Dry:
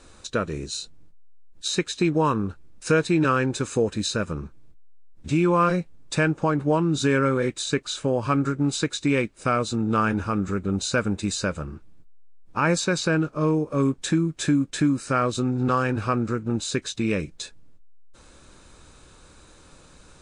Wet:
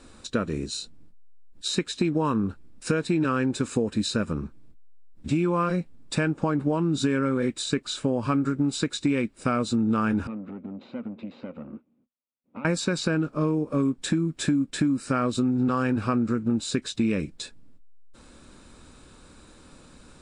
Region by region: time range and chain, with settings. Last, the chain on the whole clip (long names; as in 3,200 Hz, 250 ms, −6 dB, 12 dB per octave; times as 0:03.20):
0:10.27–0:12.65: downward compressor 10 to 1, threshold −31 dBFS + tube saturation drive 33 dB, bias 0.8 + loudspeaker in its box 190–2,800 Hz, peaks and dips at 240 Hz +10 dB, 540 Hz +8 dB, 1,700 Hz −9 dB
whole clip: parametric band 240 Hz +8 dB 0.67 octaves; downward compressor, threshold −19 dBFS; notch filter 6,300 Hz, Q 9.4; level −1 dB